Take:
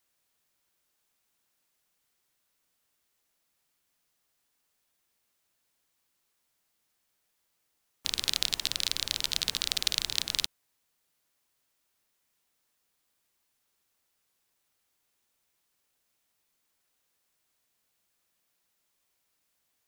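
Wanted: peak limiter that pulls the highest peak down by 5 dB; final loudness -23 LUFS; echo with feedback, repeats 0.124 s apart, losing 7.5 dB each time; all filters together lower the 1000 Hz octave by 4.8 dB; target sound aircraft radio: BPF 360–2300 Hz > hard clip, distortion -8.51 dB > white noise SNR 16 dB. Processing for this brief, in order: bell 1000 Hz -6 dB; limiter -9 dBFS; BPF 360–2300 Hz; feedback echo 0.124 s, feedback 42%, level -7.5 dB; hard clip -28 dBFS; white noise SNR 16 dB; gain +20.5 dB

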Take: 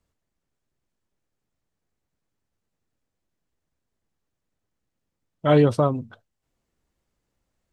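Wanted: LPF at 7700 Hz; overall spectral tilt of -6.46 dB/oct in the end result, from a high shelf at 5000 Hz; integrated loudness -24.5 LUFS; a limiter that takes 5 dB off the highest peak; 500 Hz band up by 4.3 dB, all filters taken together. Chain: LPF 7700 Hz; bell 500 Hz +5 dB; high shelf 5000 Hz +5.5 dB; gain -4 dB; limiter -13 dBFS

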